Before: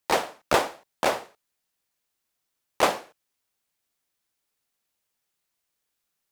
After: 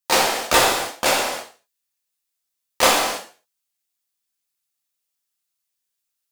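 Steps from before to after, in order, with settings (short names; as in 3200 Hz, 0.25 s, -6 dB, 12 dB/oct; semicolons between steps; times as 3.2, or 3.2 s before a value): tracing distortion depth 0.043 ms; gate -46 dBFS, range -14 dB; high shelf 2400 Hz +11.5 dB; non-linear reverb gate 0.35 s falling, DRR -4 dB; gain -1 dB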